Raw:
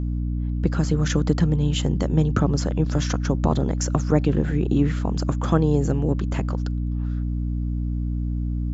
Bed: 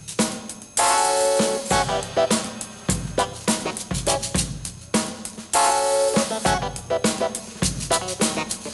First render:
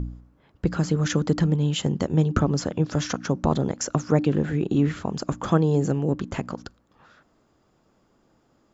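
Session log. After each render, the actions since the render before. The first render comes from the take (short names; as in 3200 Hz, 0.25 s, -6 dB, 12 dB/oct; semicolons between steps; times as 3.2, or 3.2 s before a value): de-hum 60 Hz, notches 5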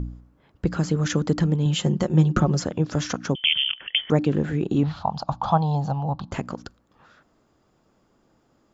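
1.65–2.63 comb 5.6 ms, depth 66%; 3.35–4.1 inverted band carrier 3300 Hz; 4.83–6.32 EQ curve 150 Hz 0 dB, 390 Hz -19 dB, 810 Hz +14 dB, 1300 Hz -1 dB, 2000 Hz -14 dB, 4200 Hz +6 dB, 6800 Hz -14 dB, 10000 Hz -30 dB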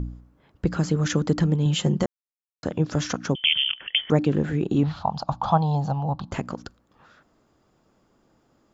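2.06–2.63 mute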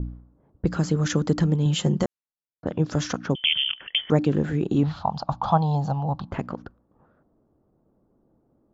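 low-pass opened by the level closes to 590 Hz, open at -20.5 dBFS; bell 2400 Hz -2 dB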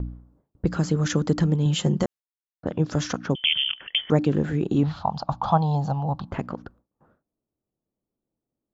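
gate with hold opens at -50 dBFS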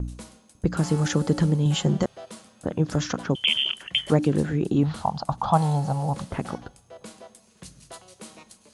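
add bed -22 dB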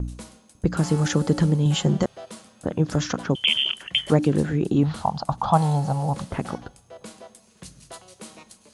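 gain +1.5 dB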